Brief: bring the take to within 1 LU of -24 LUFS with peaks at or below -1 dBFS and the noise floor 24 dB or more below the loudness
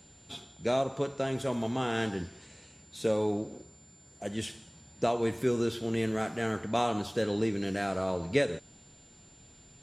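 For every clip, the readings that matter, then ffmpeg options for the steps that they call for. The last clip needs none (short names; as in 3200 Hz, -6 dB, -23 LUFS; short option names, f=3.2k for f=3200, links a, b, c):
steady tone 7200 Hz; tone level -57 dBFS; loudness -31.5 LUFS; peak -12.5 dBFS; loudness target -24.0 LUFS
-> -af "bandreject=f=7.2k:w=30"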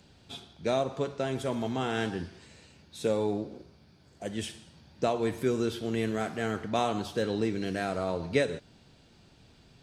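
steady tone none; loudness -31.5 LUFS; peak -12.5 dBFS; loudness target -24.0 LUFS
-> -af "volume=7.5dB"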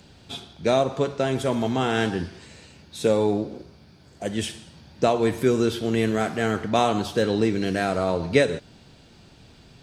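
loudness -24.0 LUFS; peak -5.0 dBFS; noise floor -52 dBFS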